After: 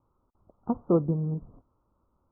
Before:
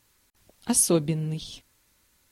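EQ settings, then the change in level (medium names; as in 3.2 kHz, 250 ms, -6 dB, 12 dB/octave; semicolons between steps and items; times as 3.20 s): steep low-pass 1.3 kHz 96 dB/octave; dynamic bell 240 Hz, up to -3 dB, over -34 dBFS, Q 3.8; 0.0 dB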